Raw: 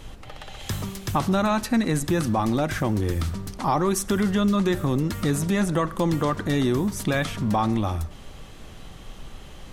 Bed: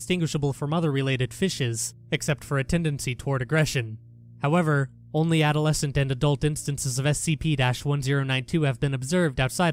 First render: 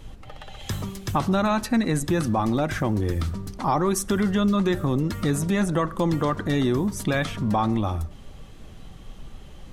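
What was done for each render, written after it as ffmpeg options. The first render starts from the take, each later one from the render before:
-af "afftdn=nr=6:nf=-42"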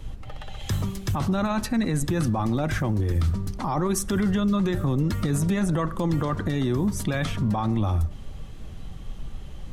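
-filter_complex "[0:a]acrossover=split=160[s0][s1];[s0]acontrast=53[s2];[s2][s1]amix=inputs=2:normalize=0,alimiter=limit=0.15:level=0:latency=1:release=14"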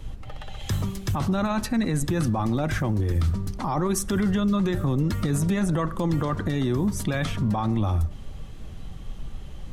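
-af anull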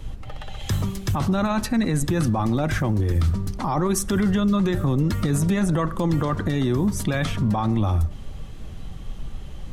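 -af "volume=1.33"

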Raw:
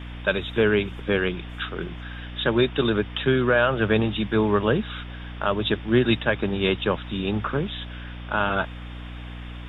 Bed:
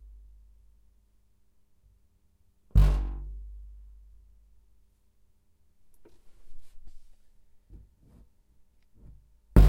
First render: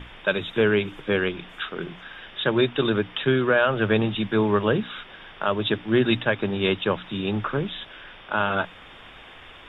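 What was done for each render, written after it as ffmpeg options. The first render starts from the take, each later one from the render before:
-af "bandreject=f=60:t=h:w=6,bandreject=f=120:t=h:w=6,bandreject=f=180:t=h:w=6,bandreject=f=240:t=h:w=6,bandreject=f=300:t=h:w=6"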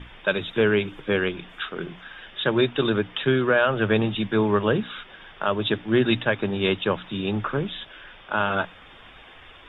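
-af "afftdn=nr=6:nf=-46"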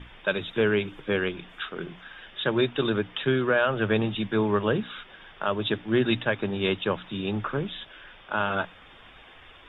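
-af "volume=0.708"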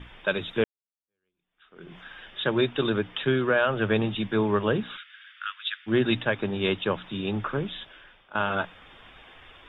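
-filter_complex "[0:a]asplit=3[s0][s1][s2];[s0]afade=t=out:st=4.96:d=0.02[s3];[s1]asuperpass=centerf=2600:order=12:qfactor=0.72,afade=t=in:st=4.96:d=0.02,afade=t=out:st=5.86:d=0.02[s4];[s2]afade=t=in:st=5.86:d=0.02[s5];[s3][s4][s5]amix=inputs=3:normalize=0,asplit=3[s6][s7][s8];[s6]atrim=end=0.64,asetpts=PTS-STARTPTS,afade=t=out:st=0.636:d=0.004:c=hsin[s9];[s7]atrim=start=0.64:end=8.35,asetpts=PTS-STARTPTS,afade=t=in:d=1.32:c=exp,afade=t=out:st=7.14:d=0.57:silence=0.16788[s10];[s8]atrim=start=8.35,asetpts=PTS-STARTPTS,afade=t=in:d=0.004:c=hsin:silence=0.16788[s11];[s9][s10][s11]concat=n=3:v=0:a=1"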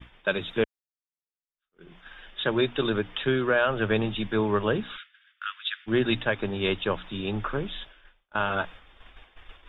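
-af "asubboost=boost=4:cutoff=63,agate=range=0.0224:threshold=0.01:ratio=3:detection=peak"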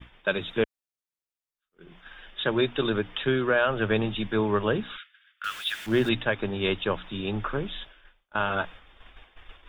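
-filter_complex "[0:a]asettb=1/sr,asplit=3[s0][s1][s2];[s0]atrim=end=5.444[s3];[s1]atrim=start=5.44:end=6.09,asetpts=PTS-STARTPTS,afade=t=in:d=0.004:c=qsin,afade=t=out:st=0.646:d=0.004:c=qsin,aeval=exprs='val(0)+0.5*0.0158*sgn(val(0))':c=same[s4];[s2]atrim=start=6.086[s5];[s3][s4]acrossfade=d=0.004:c1=hsin:c2=qsin[s6];[s6][s5]acrossfade=d=0.004:c1=qsin:c2=hsin"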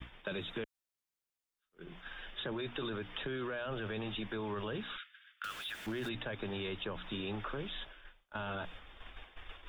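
-filter_complex "[0:a]alimiter=limit=0.0708:level=0:latency=1:release=11,acrossover=split=330|890|2600|5200[s0][s1][s2][s3][s4];[s0]acompressor=threshold=0.00708:ratio=4[s5];[s1]acompressor=threshold=0.00631:ratio=4[s6];[s2]acompressor=threshold=0.00501:ratio=4[s7];[s3]acompressor=threshold=0.00282:ratio=4[s8];[s4]acompressor=threshold=0.00141:ratio=4[s9];[s5][s6][s7][s8][s9]amix=inputs=5:normalize=0"

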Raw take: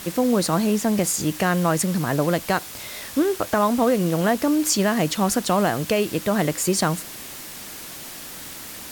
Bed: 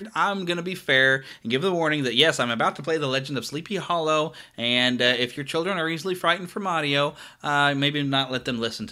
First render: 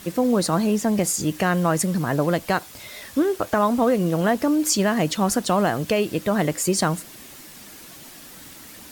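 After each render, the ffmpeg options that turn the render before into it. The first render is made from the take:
-af "afftdn=nr=7:nf=-37"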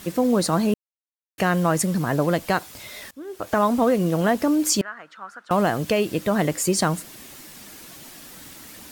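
-filter_complex "[0:a]asettb=1/sr,asplit=3[s0][s1][s2];[s0]atrim=end=4.814[s3];[s1]atrim=start=4.81:end=5.51,asetpts=PTS-STARTPTS,afade=t=in:d=0.004:c=qsin,afade=t=out:st=0.696:d=0.004:c=qsin,bandpass=f=1400:t=q:w=6.2[s4];[s2]atrim=start=5.506[s5];[s3][s4]acrossfade=d=0.004:c1=hsin:c2=qsin[s6];[s6][s5]acrossfade=d=0.004:c1=qsin:c2=hsin,asplit=4[s7][s8][s9][s10];[s7]atrim=end=0.74,asetpts=PTS-STARTPTS,afade=t=out:st=0.736:d=0.004:c=hsin[s11];[s8]atrim=start=0.74:end=1.38,asetpts=PTS-STARTPTS,volume=0[s12];[s9]atrim=start=1.38:end=3.11,asetpts=PTS-STARTPTS,afade=t=in:d=0.004:c=hsin,afade=t=out:st=1.726:d=0.004:c=hsin:silence=0.0794328[s13];[s10]atrim=start=3.11,asetpts=PTS-STARTPTS,afade=t=in:d=0.45:c=qua:silence=0.0794328[s14];[s11][s12][s13][s14]concat=n=4:v=0:a=1"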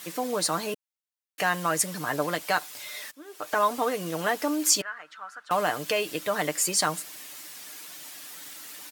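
-af "highpass=f=1100:p=1,aecho=1:1:6.7:0.48"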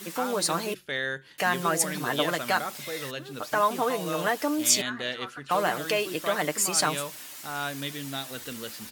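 -filter_complex "[1:a]volume=0.251[s0];[0:a][s0]amix=inputs=2:normalize=0"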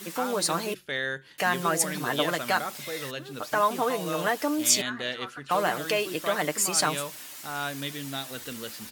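-af anull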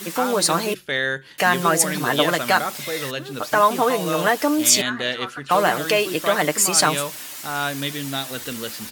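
-af "volume=2.37,alimiter=limit=0.708:level=0:latency=1"

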